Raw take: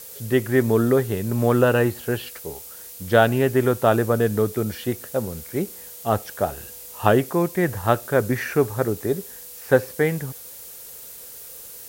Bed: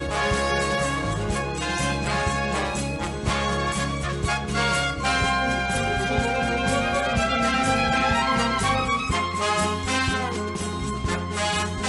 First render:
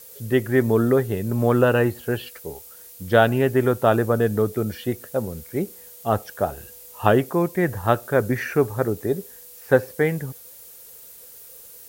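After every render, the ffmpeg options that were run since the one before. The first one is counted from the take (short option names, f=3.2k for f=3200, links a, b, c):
-af "afftdn=nr=6:nf=-40"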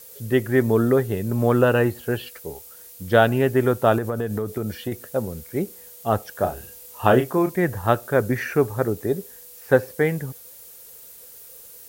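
-filter_complex "[0:a]asettb=1/sr,asplit=3[a][b][c];[a]atrim=end=3.984[d];[b]atrim=start=3.98:end=4.92,asetpts=PTS-STARTPTS,afade=t=in:d=0.004:c=qsin,afade=t=out:st=0.936:d=0.004:c=qsin,acompressor=threshold=-21dB:ratio=5:attack=3.2:release=140:knee=1:detection=peak[e];[c]atrim=start=4.916[f];[d][e]acrossfade=d=0.004:c1=hsin:c2=qsin[g];[g][f]acrossfade=d=0.004:c1=qsin:c2=hsin,asettb=1/sr,asplit=3[h][i][j];[h]atrim=end=6.324[k];[i]atrim=start=6.32:end=7.6,asetpts=PTS-STARTPTS,afade=t=in:d=0.004:c=qsin,afade=t=out:st=1.276:d=0.004:c=qsin,asplit=2[l][m];[m]adelay=32,volume=-7dB[n];[l][n]amix=inputs=2:normalize=0,atrim=end_sample=56448[o];[j]atrim=start=7.596[p];[k][o]acrossfade=d=0.004:c1=hsin:c2=qsin[q];[q][p]acrossfade=d=0.004:c1=qsin:c2=hsin"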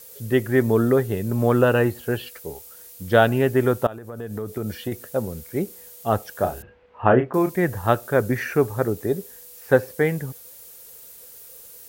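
-filter_complex "[0:a]asettb=1/sr,asplit=3[a][b][c];[a]atrim=end=6.624[d];[b]atrim=start=6.62:end=7.34,asetpts=PTS-STARTPTS,afade=t=in:d=0.004:c=qsin,afade=t=out:st=0.716:d=0.004:c=qsin,lowpass=f=2.3k:w=0.5412,lowpass=f=2.3k:w=1.3066[e];[c]atrim=start=7.336[f];[d][e]acrossfade=d=0.004:c1=hsin:c2=qsin[g];[g][f]acrossfade=d=0.004:c1=qsin:c2=hsin,asplit=2[h][i];[h]atrim=end=3.87,asetpts=PTS-STARTPTS,afade=t=out:st=3.866:d=0.004:c=hsin:silence=0.0707946[j];[i]atrim=start=3.87,asetpts=PTS-STARTPTS,afade=t=in:d=0.85:silence=0.0707946[k];[j][k]concat=n=2:v=0:a=1"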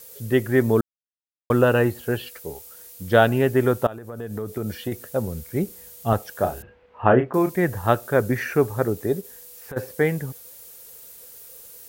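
-filter_complex "[0:a]asettb=1/sr,asplit=3[a][b][c];[a]atrim=end=4.934[d];[b]atrim=start=4.93:end=6.13,asetpts=PTS-STARTPTS,afade=t=in:d=0.004:c=qsin,afade=t=out:st=1.196:d=0.004:c=qsin,asubboost=boost=5:cutoff=240[e];[c]atrim=start=6.126[f];[d][e]acrossfade=d=0.004:c1=hsin:c2=qsin[g];[g][f]acrossfade=d=0.004:c1=qsin:c2=hsin,asplit=3[h][i][j];[h]afade=t=out:st=9.2:d=0.02[k];[i]acompressor=threshold=-33dB:ratio=10:attack=3.2:release=140:knee=1:detection=peak,afade=t=in:st=9.2:d=0.02,afade=t=out:st=9.76:d=0.02[l];[j]afade=t=in:st=9.76:d=0.02[m];[k][l][m]amix=inputs=3:normalize=0,asplit=3[n][o][p];[n]atrim=end=0.81,asetpts=PTS-STARTPTS,afade=t=out:st=0.806:d=0.004:c=hsin[q];[o]atrim=start=0.81:end=1.5,asetpts=PTS-STARTPTS,volume=0[r];[p]atrim=start=1.5,asetpts=PTS-STARTPTS,afade=t=in:d=0.004:c=hsin[s];[q][r][s]concat=n=3:v=0:a=1"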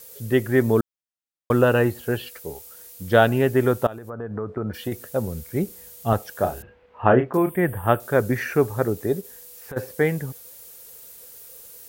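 -filter_complex "[0:a]asplit=3[a][b][c];[a]afade=t=out:st=4.09:d=0.02[d];[b]lowpass=f=1.3k:t=q:w=1.9,afade=t=in:st=4.09:d=0.02,afade=t=out:st=4.73:d=0.02[e];[c]afade=t=in:st=4.73:d=0.02[f];[d][e][f]amix=inputs=3:normalize=0,asettb=1/sr,asplit=3[g][h][i];[g]atrim=end=7.374[j];[h]atrim=start=7.37:end=8,asetpts=PTS-STARTPTS,afade=t=in:d=0.004:c=qsin,afade=t=out:st=0.626:d=0.004:c=qsin,asuperstop=centerf=5400:order=20:qfactor=1.2[k];[i]atrim=start=7.996[l];[j][k]acrossfade=d=0.004:c1=hsin:c2=qsin[m];[m][l]acrossfade=d=0.004:c1=qsin:c2=hsin"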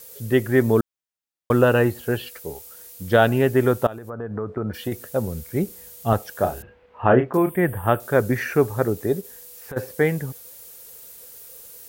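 -af "volume=1dB,alimiter=limit=-3dB:level=0:latency=1"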